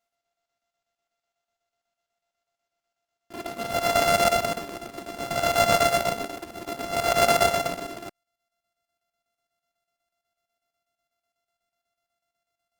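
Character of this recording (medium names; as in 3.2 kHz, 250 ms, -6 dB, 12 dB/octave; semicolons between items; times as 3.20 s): a buzz of ramps at a fixed pitch in blocks of 64 samples; chopped level 8.1 Hz, depth 60%, duty 70%; Opus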